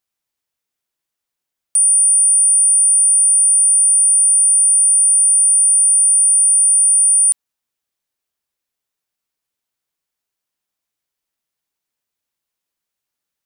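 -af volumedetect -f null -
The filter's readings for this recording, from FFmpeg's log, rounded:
mean_volume: -15.5 dB
max_volume: -8.6 dB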